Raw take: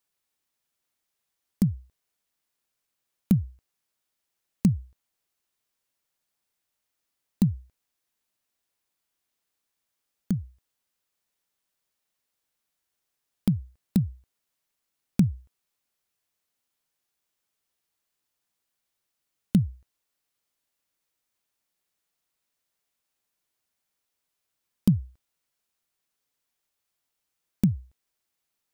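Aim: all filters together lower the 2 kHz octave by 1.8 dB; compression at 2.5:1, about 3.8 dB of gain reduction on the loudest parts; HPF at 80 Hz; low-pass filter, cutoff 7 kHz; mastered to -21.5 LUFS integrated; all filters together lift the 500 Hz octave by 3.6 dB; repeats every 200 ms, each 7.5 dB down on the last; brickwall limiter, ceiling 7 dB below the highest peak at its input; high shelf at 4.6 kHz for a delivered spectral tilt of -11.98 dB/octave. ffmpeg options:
-af "highpass=80,lowpass=7000,equalizer=f=500:t=o:g=5,equalizer=f=2000:t=o:g=-3.5,highshelf=f=4600:g=4.5,acompressor=threshold=0.0891:ratio=2.5,alimiter=limit=0.126:level=0:latency=1,aecho=1:1:200|400|600|800|1000:0.422|0.177|0.0744|0.0312|0.0131,volume=5.01"

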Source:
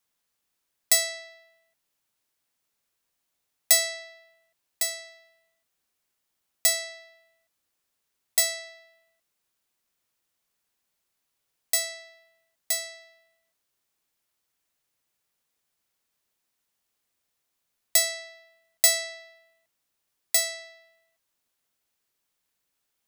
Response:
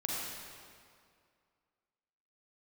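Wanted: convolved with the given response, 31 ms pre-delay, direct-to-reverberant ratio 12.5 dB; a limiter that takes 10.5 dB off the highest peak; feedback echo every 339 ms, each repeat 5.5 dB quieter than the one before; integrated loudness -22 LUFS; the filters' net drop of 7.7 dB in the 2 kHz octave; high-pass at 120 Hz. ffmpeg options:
-filter_complex "[0:a]highpass=120,equalizer=f=2000:t=o:g=-8,alimiter=limit=0.141:level=0:latency=1,aecho=1:1:339|678|1017|1356|1695|2034|2373:0.531|0.281|0.149|0.079|0.0419|0.0222|0.0118,asplit=2[s0][s1];[1:a]atrim=start_sample=2205,adelay=31[s2];[s1][s2]afir=irnorm=-1:irlink=0,volume=0.141[s3];[s0][s3]amix=inputs=2:normalize=0,volume=3.16"

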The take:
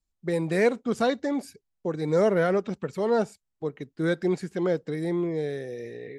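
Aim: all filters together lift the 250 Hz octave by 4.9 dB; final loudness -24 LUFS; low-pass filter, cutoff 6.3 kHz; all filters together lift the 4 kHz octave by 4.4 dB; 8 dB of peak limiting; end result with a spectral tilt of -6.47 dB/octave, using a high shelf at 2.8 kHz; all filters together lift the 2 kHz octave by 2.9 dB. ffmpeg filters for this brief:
-af "lowpass=6300,equalizer=f=250:t=o:g=7,equalizer=f=2000:t=o:g=3.5,highshelf=f=2800:g=-4,equalizer=f=4000:t=o:g=7.5,volume=1.41,alimiter=limit=0.211:level=0:latency=1"

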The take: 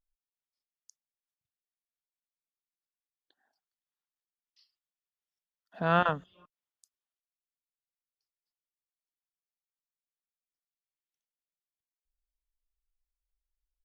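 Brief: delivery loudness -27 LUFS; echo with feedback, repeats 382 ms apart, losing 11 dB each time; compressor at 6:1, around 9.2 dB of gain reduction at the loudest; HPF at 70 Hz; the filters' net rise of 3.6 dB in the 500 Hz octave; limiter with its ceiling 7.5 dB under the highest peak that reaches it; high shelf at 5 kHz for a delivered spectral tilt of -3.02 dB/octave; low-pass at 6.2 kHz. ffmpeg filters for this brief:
-af "highpass=70,lowpass=6200,equalizer=f=500:t=o:g=5,highshelf=f=5000:g=-8,acompressor=threshold=0.0447:ratio=6,alimiter=level_in=1.33:limit=0.0631:level=0:latency=1,volume=0.75,aecho=1:1:382|764|1146:0.282|0.0789|0.0221,volume=5.96"

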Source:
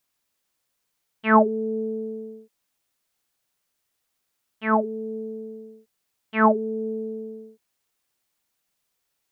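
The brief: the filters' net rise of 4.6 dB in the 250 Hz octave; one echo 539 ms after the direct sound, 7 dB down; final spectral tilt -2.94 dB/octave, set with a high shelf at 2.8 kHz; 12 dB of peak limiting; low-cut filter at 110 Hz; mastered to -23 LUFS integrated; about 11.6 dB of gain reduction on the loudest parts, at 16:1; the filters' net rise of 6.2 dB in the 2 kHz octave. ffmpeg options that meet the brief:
-af "highpass=110,equalizer=f=250:t=o:g=5.5,equalizer=f=2000:t=o:g=5,highshelf=f=2800:g=8.5,acompressor=threshold=0.126:ratio=16,alimiter=limit=0.0944:level=0:latency=1,aecho=1:1:539:0.447,volume=2.66"

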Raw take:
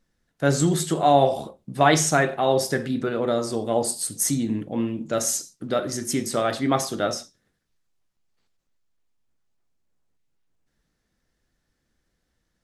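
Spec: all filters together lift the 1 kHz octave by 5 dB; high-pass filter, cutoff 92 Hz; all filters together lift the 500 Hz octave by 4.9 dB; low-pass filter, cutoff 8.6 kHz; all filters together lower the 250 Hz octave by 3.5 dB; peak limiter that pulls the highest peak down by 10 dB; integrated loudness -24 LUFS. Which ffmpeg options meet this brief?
-af "highpass=92,lowpass=8600,equalizer=f=250:t=o:g=-7,equalizer=f=500:t=o:g=6,equalizer=f=1000:t=o:g=5,volume=0.891,alimiter=limit=0.282:level=0:latency=1"

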